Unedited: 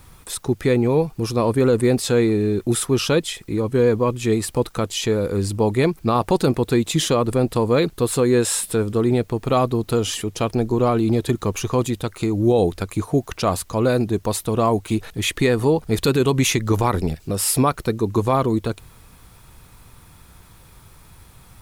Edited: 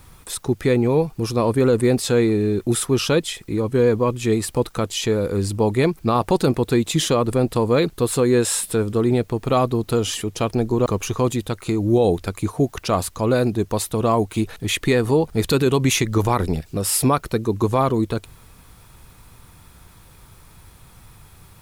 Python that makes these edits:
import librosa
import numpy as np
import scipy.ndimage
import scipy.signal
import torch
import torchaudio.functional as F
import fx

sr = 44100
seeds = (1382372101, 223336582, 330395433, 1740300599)

y = fx.edit(x, sr, fx.cut(start_s=10.86, length_s=0.54), tone=tone)